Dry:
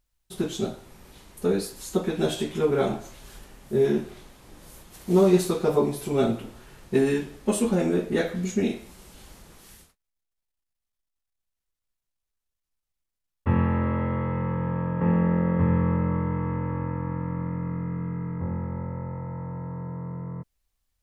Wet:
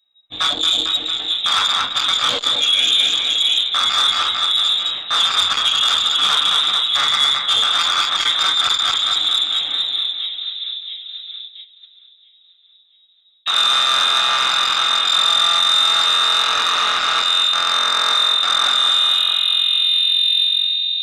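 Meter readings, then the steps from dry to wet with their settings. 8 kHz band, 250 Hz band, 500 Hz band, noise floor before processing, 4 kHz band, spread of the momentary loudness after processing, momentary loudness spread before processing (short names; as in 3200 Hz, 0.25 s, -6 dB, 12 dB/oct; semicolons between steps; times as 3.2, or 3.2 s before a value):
+14.0 dB, under -15 dB, -10.5 dB, -84 dBFS, +33.5 dB, 7 LU, 12 LU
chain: rattling part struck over -25 dBFS, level -13 dBFS; reverb removal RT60 0.63 s; limiter -15.5 dBFS, peak gain reduction 8.5 dB; AGC gain up to 5.5 dB; high shelf 2300 Hz +10 dB; shoebox room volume 530 m³, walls furnished, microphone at 5.1 m; inverted band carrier 3800 Hz; on a send: split-band echo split 3000 Hz, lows 0.224 s, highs 0.676 s, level -7 dB; on the sum: gate -40 dBFS, range -10 dB; reverse; compressor 8:1, threshold -17 dBFS, peak gain reduction 15 dB; reverse; low shelf 370 Hz -10.5 dB; core saturation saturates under 3400 Hz; gain +5.5 dB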